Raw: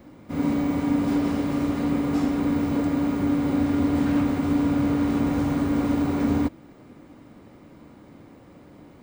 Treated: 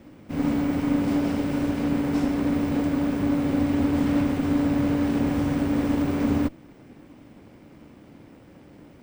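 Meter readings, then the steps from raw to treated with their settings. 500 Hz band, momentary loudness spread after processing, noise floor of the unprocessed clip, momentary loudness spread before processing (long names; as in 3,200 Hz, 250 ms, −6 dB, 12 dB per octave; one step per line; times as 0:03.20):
+0.5 dB, 3 LU, −49 dBFS, 3 LU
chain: lower of the sound and its delayed copy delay 0.37 ms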